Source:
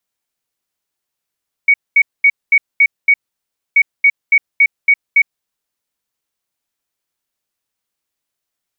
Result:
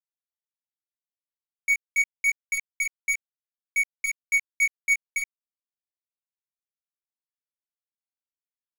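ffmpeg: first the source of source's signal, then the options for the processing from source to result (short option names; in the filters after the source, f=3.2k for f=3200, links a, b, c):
-f lavfi -i "aevalsrc='0.531*sin(2*PI*2240*t)*clip(min(mod(mod(t,2.08),0.28),0.06-mod(mod(t,2.08),0.28))/0.005,0,1)*lt(mod(t,2.08),1.68)':d=4.16:s=44100"
-af "asoftclip=type=tanh:threshold=-17dB,acrusher=bits=7:dc=4:mix=0:aa=0.000001,flanger=delay=15.5:depth=3.8:speed=0.27"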